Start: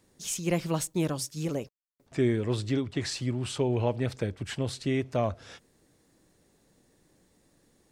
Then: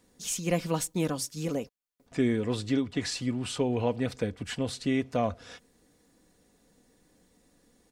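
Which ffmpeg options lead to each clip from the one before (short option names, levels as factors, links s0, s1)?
-af "aecho=1:1:4.1:0.42"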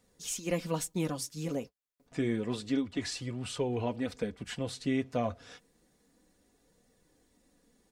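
-af "flanger=delay=1.4:depth=6.7:regen=-47:speed=0.29:shape=triangular"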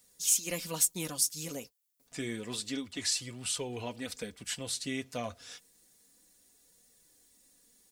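-af "crystalizer=i=7.5:c=0,volume=0.422"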